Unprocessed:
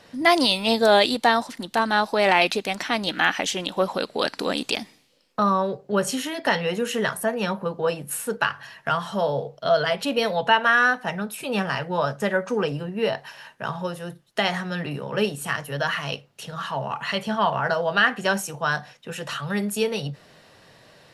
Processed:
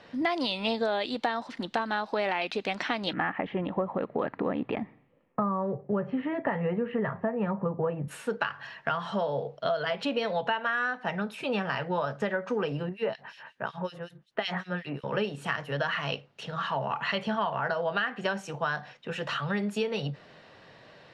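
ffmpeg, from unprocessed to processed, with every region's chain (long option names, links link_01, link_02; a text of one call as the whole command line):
ffmpeg -i in.wav -filter_complex "[0:a]asettb=1/sr,asplit=3[link_01][link_02][link_03];[link_01]atrim=end=3.134[link_04];[link_02]atrim=start=3.13:end=8.08,asetpts=PTS-STARTPTS,afade=type=in:duration=0.004:curve=qsin,afade=type=out:start_time=4.946:duration=0.004:curve=qsin,lowpass=frequency=1900:width=0.5412,lowpass=frequency=1900:width=1.3066,equalizer=frequency=110:width_type=o:width=1.5:gain=11.5,bandreject=frequency=1500:width=6.6[link_05];[link_03]atrim=start=8.076[link_06];[link_04][link_05]acrossfade=duration=0.004:curve1=hsin:curve2=qsin[link_07];[link_07][link_06]acrossfade=duration=0.004:curve1=qsin:curve2=hsin,asettb=1/sr,asplit=3[link_08][link_09][link_10];[link_08]atrim=end=12.894[link_11];[link_09]atrim=start=12.89:end=15.04,asetpts=PTS-STARTPTS,afade=type=in:duration=0.004:curve=qsin,afade=type=out:start_time=2.146:duration=0.004:curve=qsin,highshelf=frequency=10000:gain=10,bandreject=frequency=50:width_type=h:width=6,bandreject=frequency=100:width_type=h:width=6,bandreject=frequency=150:width_type=h:width=6,bandreject=frequency=200:width_type=h:width=6,bandreject=frequency=250:width_type=h:width=6,acrossover=split=2300[link_12][link_13];[link_12]aeval=exprs='val(0)*(1-1/2+1/2*cos(2*PI*5.4*n/s))':channel_layout=same[link_14];[link_13]aeval=exprs='val(0)*(1-1/2-1/2*cos(2*PI*5.4*n/s))':channel_layout=same[link_15];[link_14][link_15]amix=inputs=2:normalize=0[link_16];[link_10]atrim=start=15.036[link_17];[link_11][link_16]acrossfade=duration=0.004:curve1=hsin:curve2=qsin[link_18];[link_18][link_17]acrossfade=duration=0.004:curve1=qsin:curve2=hsin,lowpass=3600,lowshelf=frequency=110:gain=-5.5,acompressor=threshold=-25dB:ratio=10" out.wav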